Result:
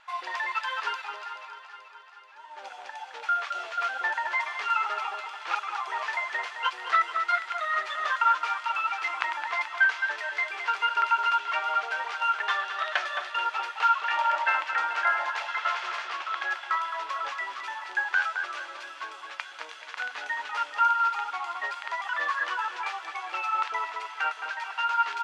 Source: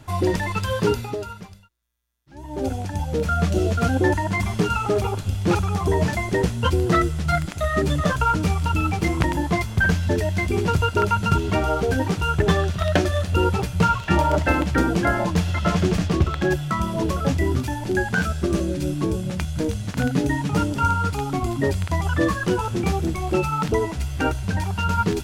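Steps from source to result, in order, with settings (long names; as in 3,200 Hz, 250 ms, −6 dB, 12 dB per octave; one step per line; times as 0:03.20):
high-pass filter 970 Hz 24 dB per octave
slap from a distant wall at 37 metres, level −9 dB
pitch vibrato 2.5 Hz 10 cents
low-pass filter 3,100 Hz 12 dB per octave
delay that swaps between a low-pass and a high-pass 216 ms, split 1,300 Hz, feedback 76%, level −10 dB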